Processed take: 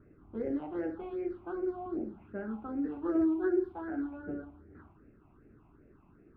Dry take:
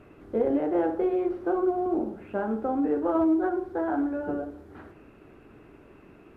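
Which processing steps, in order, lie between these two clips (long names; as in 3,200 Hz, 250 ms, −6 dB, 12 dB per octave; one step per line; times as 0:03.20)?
0:03.03–0:03.72: hollow resonant body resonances 370/1,700 Hz, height 10 dB, ringing for 35 ms
low-pass that shuts in the quiet parts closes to 1,200 Hz, open at −16.5 dBFS
all-pass phaser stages 6, 2.6 Hz, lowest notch 450–1,000 Hz
level −5.5 dB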